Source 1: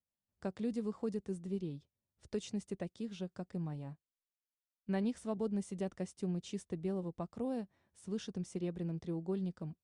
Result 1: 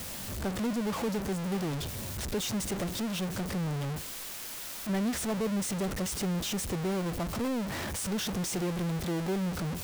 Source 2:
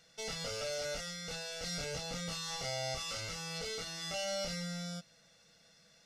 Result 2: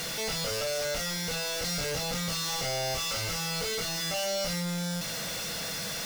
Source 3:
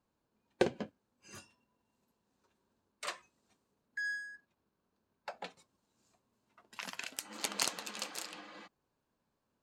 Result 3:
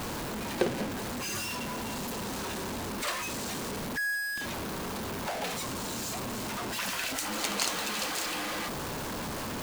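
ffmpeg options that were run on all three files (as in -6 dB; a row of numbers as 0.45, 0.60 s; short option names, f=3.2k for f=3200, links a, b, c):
-af "aeval=exprs='val(0)+0.5*0.0355*sgn(val(0))':c=same"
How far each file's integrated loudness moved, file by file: +7.5, +8.5, +7.0 LU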